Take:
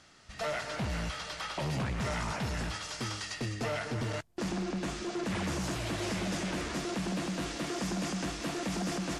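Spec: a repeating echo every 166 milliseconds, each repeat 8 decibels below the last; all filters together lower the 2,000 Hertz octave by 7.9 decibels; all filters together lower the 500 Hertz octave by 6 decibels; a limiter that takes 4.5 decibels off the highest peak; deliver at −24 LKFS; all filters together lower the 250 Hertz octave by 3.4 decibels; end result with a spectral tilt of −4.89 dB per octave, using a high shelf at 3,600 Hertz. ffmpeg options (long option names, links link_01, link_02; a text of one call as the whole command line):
ffmpeg -i in.wav -af "equalizer=frequency=250:width_type=o:gain=-3,equalizer=frequency=500:width_type=o:gain=-7,equalizer=frequency=2000:width_type=o:gain=-8.5,highshelf=frequency=3600:gain=-4.5,alimiter=level_in=8dB:limit=-24dB:level=0:latency=1,volume=-8dB,aecho=1:1:166|332|498|664|830:0.398|0.159|0.0637|0.0255|0.0102,volume=15dB" out.wav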